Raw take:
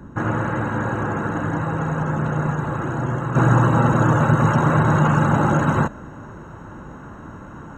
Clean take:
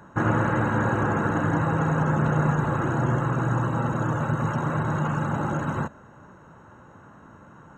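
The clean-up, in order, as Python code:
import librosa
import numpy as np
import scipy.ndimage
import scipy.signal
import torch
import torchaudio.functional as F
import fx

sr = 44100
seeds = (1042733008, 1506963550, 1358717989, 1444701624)

y = fx.noise_reduce(x, sr, print_start_s=6.22, print_end_s=6.72, reduce_db=11.0)
y = fx.gain(y, sr, db=fx.steps((0.0, 0.0), (3.35, -9.0)))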